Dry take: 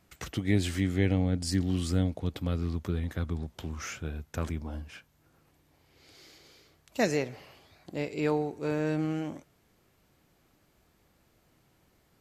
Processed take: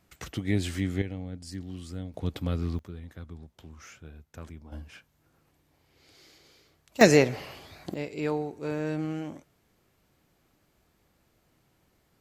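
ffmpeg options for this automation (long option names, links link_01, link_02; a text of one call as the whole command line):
ffmpeg -i in.wav -af "asetnsamples=nb_out_samples=441:pad=0,asendcmd='1.02 volume volume -10.5dB;2.14 volume volume 1dB;2.79 volume volume -10.5dB;4.72 volume volume -2dB;7.01 volume volume 10dB;7.94 volume volume -1.5dB',volume=-1dB" out.wav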